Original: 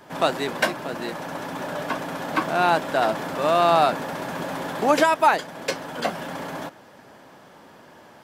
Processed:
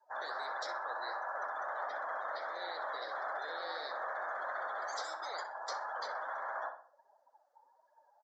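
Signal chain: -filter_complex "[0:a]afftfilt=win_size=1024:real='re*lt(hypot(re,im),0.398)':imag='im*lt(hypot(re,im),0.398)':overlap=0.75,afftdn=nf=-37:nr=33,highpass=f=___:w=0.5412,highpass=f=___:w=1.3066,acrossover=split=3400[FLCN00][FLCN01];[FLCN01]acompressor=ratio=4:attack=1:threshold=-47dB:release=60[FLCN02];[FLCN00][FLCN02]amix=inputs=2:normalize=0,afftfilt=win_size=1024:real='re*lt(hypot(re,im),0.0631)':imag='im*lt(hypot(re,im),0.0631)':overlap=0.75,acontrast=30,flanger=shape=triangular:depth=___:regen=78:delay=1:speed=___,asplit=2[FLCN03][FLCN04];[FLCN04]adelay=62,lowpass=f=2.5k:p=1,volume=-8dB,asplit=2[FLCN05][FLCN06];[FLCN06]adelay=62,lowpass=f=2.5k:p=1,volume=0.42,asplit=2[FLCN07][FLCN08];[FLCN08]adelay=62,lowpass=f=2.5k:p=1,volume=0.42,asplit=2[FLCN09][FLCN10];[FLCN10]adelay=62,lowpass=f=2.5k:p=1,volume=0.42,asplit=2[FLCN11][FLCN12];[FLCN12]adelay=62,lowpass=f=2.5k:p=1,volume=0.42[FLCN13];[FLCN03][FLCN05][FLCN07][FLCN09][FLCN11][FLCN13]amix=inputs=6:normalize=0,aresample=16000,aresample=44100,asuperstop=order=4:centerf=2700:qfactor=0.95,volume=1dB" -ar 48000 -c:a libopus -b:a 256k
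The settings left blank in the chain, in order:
850, 850, 9.6, 1.5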